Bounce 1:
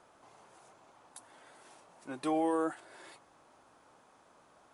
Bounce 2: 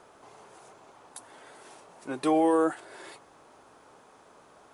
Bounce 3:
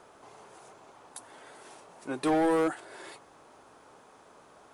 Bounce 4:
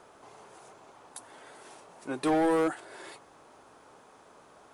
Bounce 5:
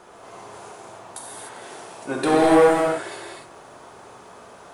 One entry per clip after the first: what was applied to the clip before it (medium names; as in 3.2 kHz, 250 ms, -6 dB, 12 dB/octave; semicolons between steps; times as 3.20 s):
peaking EQ 420 Hz +6 dB 0.3 oct; trim +6.5 dB
overload inside the chain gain 21.5 dB
no audible change
gated-style reverb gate 320 ms flat, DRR -4 dB; trim +6 dB